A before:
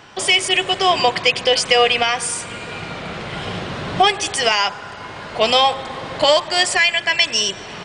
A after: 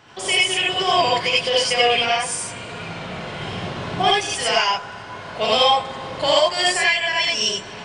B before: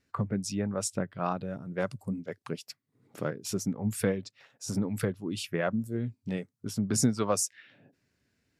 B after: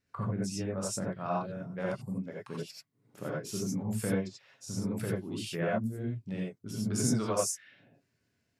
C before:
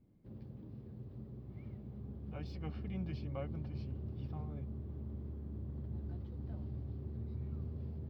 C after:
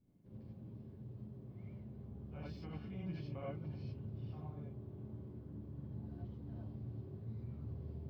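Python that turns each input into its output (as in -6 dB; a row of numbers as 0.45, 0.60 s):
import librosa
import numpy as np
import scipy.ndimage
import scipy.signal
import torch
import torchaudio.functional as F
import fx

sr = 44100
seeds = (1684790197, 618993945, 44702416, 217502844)

y = fx.rev_gated(x, sr, seeds[0], gate_ms=110, shape='rising', drr_db=-4.5)
y = y * 10.0 ** (-8.0 / 20.0)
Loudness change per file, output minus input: -2.0, -2.0, -3.5 LU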